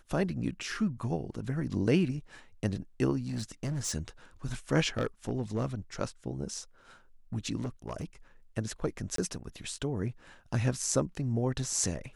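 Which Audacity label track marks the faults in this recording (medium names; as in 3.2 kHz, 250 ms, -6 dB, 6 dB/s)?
3.270000	3.940000	clipped -29.5 dBFS
4.970000	5.740000	clipped -24.5 dBFS
7.620000	8.050000	clipped -30.5 dBFS
9.160000	9.180000	dropout 23 ms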